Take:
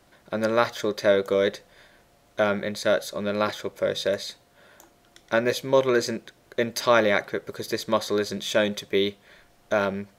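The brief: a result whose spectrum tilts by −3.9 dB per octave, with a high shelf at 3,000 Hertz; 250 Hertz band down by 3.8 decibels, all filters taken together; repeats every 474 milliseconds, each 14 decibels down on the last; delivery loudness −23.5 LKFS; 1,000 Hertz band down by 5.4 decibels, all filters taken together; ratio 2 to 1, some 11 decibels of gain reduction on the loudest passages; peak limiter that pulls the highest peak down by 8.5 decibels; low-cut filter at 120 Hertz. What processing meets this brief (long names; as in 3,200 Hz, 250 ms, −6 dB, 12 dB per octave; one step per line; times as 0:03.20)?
high-pass filter 120 Hz
parametric band 250 Hz −4.5 dB
parametric band 1,000 Hz −6 dB
high-shelf EQ 3,000 Hz −6.5 dB
downward compressor 2 to 1, threshold −38 dBFS
brickwall limiter −26.5 dBFS
repeating echo 474 ms, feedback 20%, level −14 dB
level +15.5 dB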